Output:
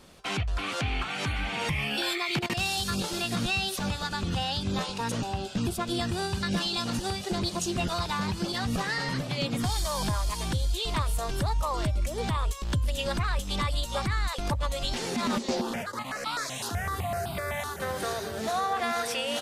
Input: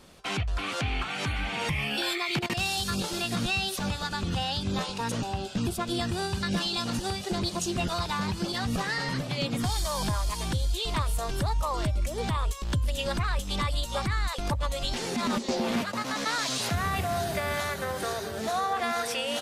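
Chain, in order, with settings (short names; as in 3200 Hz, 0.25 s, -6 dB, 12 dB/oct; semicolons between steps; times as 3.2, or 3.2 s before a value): 15.61–17.8 step phaser 7.9 Hz 590–1800 Hz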